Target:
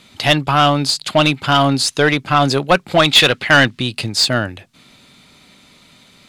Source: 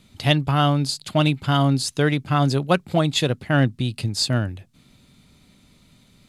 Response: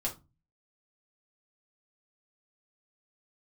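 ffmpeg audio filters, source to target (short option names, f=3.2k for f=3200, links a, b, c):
-filter_complex "[0:a]asplit=3[a][b][c];[a]afade=t=out:st=2.98:d=0.02[d];[b]equalizer=f=2.6k:w=0.51:g=10,afade=t=in:st=2.98:d=0.02,afade=t=out:st=3.78:d=0.02[e];[c]afade=t=in:st=3.78:d=0.02[f];[d][e][f]amix=inputs=3:normalize=0,asplit=2[g][h];[h]highpass=f=720:p=1,volume=19dB,asoftclip=type=tanh:threshold=0dB[i];[g][i]amix=inputs=2:normalize=0,lowpass=f=4.6k:p=1,volume=-6dB"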